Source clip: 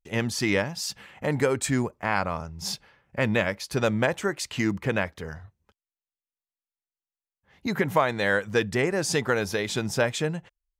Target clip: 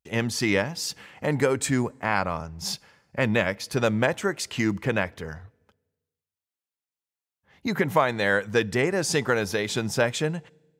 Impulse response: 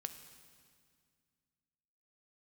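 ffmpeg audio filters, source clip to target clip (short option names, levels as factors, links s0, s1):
-filter_complex "[0:a]highpass=63,asplit=2[s0][s1];[1:a]atrim=start_sample=2205,asetrate=79380,aresample=44100[s2];[s1][s2]afir=irnorm=-1:irlink=0,volume=0.335[s3];[s0][s3]amix=inputs=2:normalize=0"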